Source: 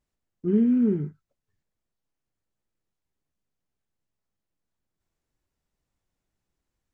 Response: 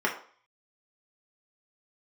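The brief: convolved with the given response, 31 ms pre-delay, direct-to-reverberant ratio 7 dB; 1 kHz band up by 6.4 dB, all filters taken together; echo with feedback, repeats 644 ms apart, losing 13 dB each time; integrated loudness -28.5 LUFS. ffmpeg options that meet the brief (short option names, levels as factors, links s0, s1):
-filter_complex "[0:a]equalizer=f=1000:t=o:g=8.5,aecho=1:1:644|1288|1932:0.224|0.0493|0.0108,asplit=2[s0][s1];[1:a]atrim=start_sample=2205,adelay=31[s2];[s1][s2]afir=irnorm=-1:irlink=0,volume=0.112[s3];[s0][s3]amix=inputs=2:normalize=0,volume=0.596"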